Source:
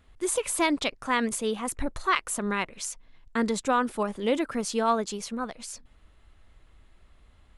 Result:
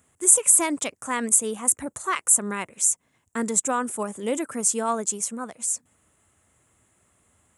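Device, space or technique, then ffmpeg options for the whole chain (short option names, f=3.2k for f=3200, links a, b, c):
budget condenser microphone: -af "highpass=f=92:w=0.5412,highpass=f=92:w=1.3066,highshelf=f=5.8k:t=q:w=3:g=11,volume=-1dB"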